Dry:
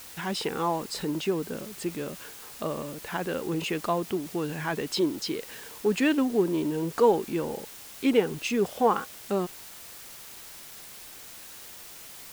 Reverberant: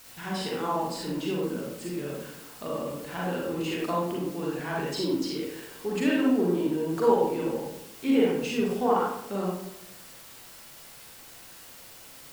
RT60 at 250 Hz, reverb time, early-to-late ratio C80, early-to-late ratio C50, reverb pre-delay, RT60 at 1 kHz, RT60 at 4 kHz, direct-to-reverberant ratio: 1.0 s, 0.85 s, 3.5 dB, -1.0 dB, 37 ms, 0.80 s, 0.45 s, -4.5 dB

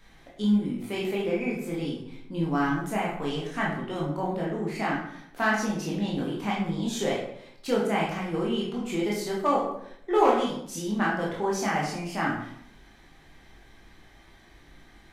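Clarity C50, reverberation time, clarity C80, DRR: 3.0 dB, 0.70 s, 7.0 dB, -4.5 dB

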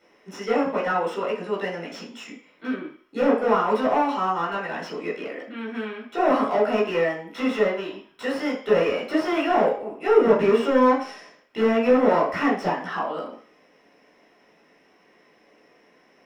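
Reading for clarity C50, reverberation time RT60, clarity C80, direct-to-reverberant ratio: 6.0 dB, 0.45 s, 10.5 dB, -6.5 dB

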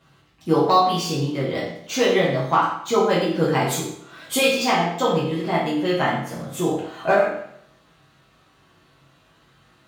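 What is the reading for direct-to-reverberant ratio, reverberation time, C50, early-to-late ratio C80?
-8.5 dB, 0.70 s, 2.5 dB, 6.0 dB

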